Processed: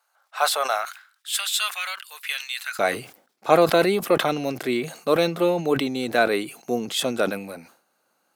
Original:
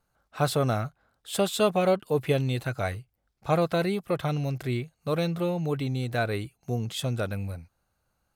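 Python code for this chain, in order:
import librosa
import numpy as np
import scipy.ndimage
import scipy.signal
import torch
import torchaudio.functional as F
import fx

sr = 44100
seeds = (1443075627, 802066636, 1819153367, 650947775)

y = fx.highpass(x, sr, hz=fx.steps((0.0, 710.0), (0.85, 1500.0), (2.79, 240.0)), slope=24)
y = fx.sustainer(y, sr, db_per_s=120.0)
y = y * librosa.db_to_amplitude(8.5)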